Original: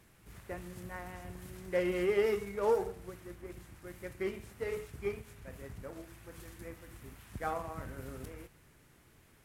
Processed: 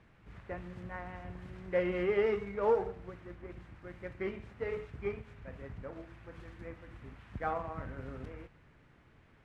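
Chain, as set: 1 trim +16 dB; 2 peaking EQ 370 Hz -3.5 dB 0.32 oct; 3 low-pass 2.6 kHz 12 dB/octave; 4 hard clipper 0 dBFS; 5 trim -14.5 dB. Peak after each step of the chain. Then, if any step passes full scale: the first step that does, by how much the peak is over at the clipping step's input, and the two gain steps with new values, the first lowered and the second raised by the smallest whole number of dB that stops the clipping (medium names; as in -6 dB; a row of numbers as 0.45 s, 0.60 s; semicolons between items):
-2.0 dBFS, -3.5 dBFS, -3.5 dBFS, -3.5 dBFS, -18.0 dBFS; nothing clips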